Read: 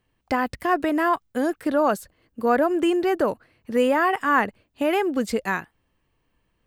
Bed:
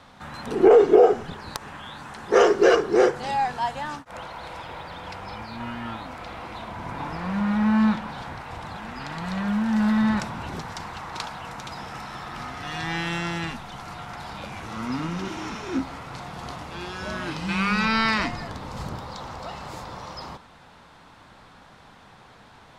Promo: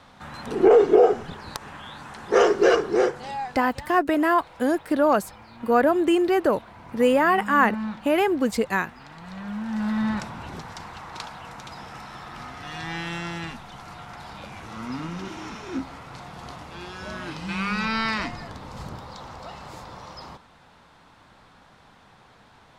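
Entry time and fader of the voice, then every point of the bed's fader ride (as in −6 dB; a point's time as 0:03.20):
3.25 s, +1.0 dB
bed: 0:02.86 −1 dB
0:03.71 −10.5 dB
0:09.19 −10.5 dB
0:10.03 −3.5 dB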